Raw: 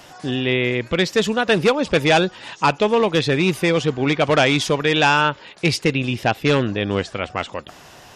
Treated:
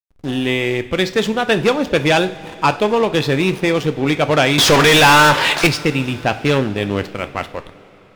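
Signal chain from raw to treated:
0:04.58–0:05.67: mid-hump overdrive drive 35 dB, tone 5,100 Hz, clips at −5.5 dBFS
slack as between gear wheels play −26.5 dBFS
coupled-rooms reverb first 0.37 s, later 4.2 s, from −18 dB, DRR 9.5 dB
level +1.5 dB

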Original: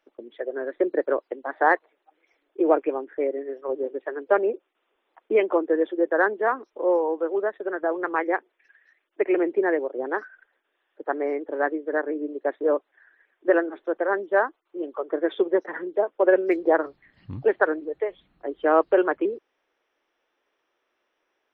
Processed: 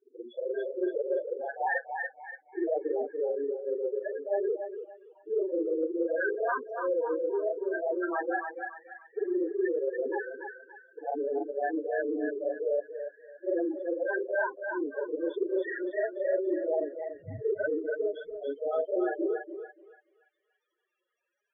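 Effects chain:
every overlapping window played backwards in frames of 100 ms
in parallel at −3.5 dB: bit-depth reduction 6 bits, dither none
on the sum: high-shelf EQ 2,300 Hz +11.5 dB
spectral peaks only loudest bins 4
reversed playback
downward compressor 4 to 1, threshold −30 dBFS, peak gain reduction 15 dB
reversed playback
feedback echo with a high-pass in the loop 286 ms, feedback 43%, high-pass 850 Hz, level −3 dB
level +1.5 dB

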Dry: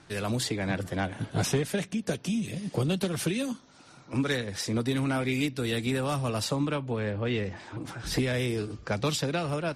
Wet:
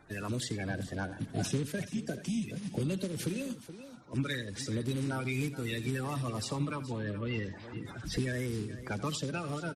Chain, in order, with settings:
spectral magnitudes quantised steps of 30 dB
low-shelf EQ 390 Hz +4.5 dB
on a send: multi-tap delay 85/426 ms −15.5/−14.5 dB
on the sum: dynamic equaliser 530 Hz, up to −5 dB, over −39 dBFS, Q 0.83
level −6 dB

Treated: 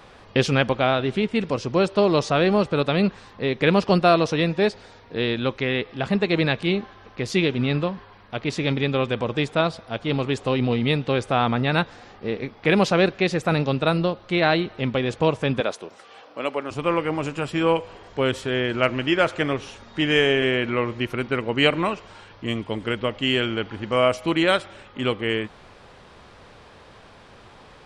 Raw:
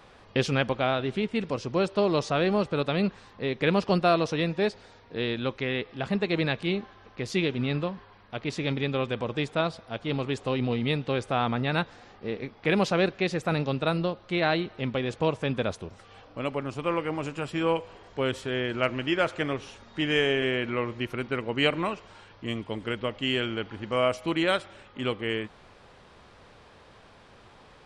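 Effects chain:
0:15.60–0:16.71: high-pass filter 340 Hz 12 dB per octave
level +5.5 dB

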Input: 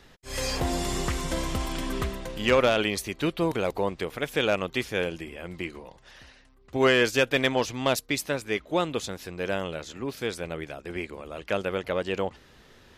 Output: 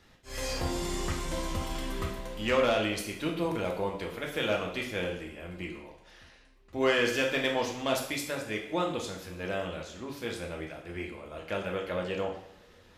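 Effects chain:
coupled-rooms reverb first 0.65 s, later 3.2 s, from −27 dB, DRR −0.5 dB
level −7.5 dB

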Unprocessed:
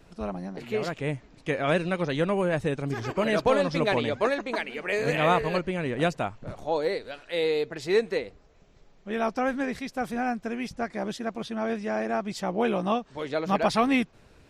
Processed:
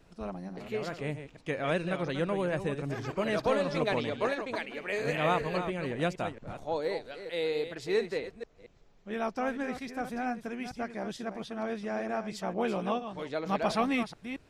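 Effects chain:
delay that plays each chunk backwards 228 ms, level −9.5 dB
level −5.5 dB

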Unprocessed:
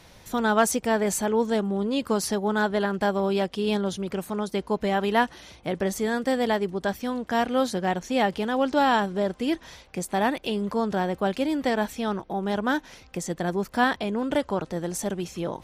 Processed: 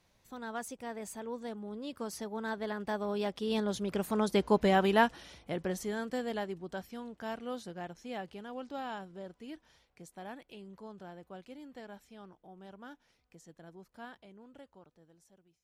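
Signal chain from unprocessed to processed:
fade-out on the ending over 1.71 s
source passing by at 0:04.46, 16 m/s, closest 7.6 metres

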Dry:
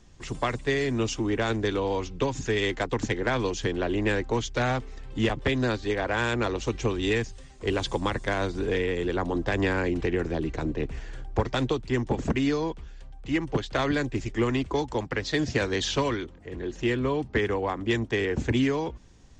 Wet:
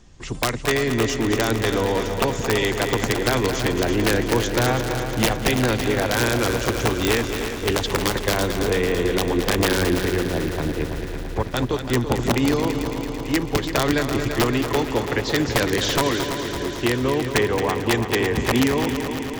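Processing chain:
0:09.97–0:11.89: transient designer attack −5 dB, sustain −9 dB
wrap-around overflow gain 16 dB
echo machine with several playback heads 111 ms, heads second and third, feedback 70%, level −9 dB
level +4.5 dB

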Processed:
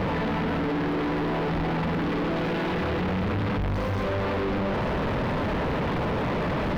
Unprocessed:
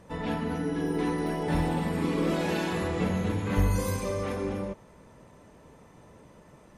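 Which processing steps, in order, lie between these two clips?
sign of each sample alone
high-frequency loss of the air 350 metres
level +5 dB

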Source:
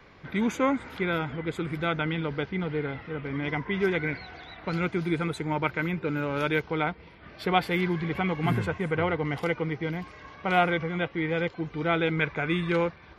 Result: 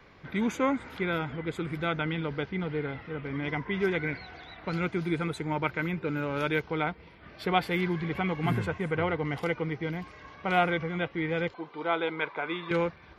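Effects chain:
0:11.54–0:12.71: loudspeaker in its box 370–4,600 Hz, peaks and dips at 960 Hz +8 dB, 1,800 Hz −5 dB, 2,600 Hz −4 dB
level −2 dB

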